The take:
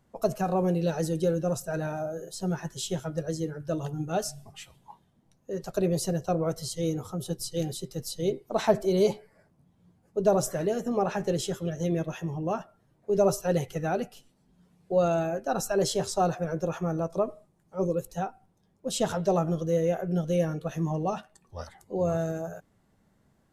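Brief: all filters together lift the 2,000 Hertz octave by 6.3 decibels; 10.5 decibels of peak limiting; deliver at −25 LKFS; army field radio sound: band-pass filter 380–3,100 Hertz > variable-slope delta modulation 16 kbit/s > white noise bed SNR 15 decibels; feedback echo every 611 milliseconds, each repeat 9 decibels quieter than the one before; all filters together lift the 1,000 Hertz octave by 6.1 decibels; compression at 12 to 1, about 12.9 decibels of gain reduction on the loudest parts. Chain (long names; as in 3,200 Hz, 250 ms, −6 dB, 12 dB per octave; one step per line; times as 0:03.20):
parametric band 1,000 Hz +8.5 dB
parametric band 2,000 Hz +5.5 dB
downward compressor 12 to 1, threshold −26 dBFS
brickwall limiter −25.5 dBFS
band-pass filter 380–3,100 Hz
repeating echo 611 ms, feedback 35%, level −9 dB
variable-slope delta modulation 16 kbit/s
white noise bed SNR 15 dB
level +13.5 dB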